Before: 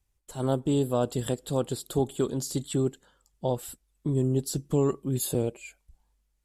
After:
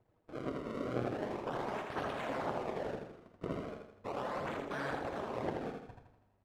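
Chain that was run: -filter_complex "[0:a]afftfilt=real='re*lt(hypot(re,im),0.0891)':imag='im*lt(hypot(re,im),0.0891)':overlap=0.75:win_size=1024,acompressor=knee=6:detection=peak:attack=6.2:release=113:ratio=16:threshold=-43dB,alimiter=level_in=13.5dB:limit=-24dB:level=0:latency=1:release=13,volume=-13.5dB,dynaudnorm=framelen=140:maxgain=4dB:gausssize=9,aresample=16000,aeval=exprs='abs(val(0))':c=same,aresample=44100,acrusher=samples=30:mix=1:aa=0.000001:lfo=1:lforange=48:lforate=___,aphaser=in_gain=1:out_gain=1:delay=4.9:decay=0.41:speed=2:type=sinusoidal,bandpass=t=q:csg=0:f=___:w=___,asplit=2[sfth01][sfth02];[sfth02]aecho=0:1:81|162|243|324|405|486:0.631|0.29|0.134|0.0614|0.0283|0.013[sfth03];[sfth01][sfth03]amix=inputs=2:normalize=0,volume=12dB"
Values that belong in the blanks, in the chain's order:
0.37, 600, 0.6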